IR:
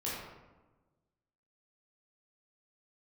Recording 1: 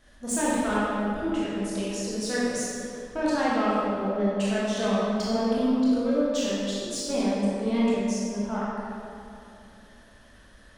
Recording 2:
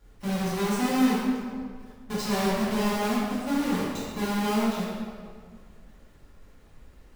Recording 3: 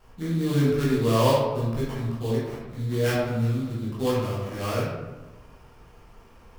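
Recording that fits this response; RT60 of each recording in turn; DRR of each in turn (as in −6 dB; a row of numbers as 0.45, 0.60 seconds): 3; 2.7, 1.9, 1.2 seconds; −8.5, −10.5, −8.0 decibels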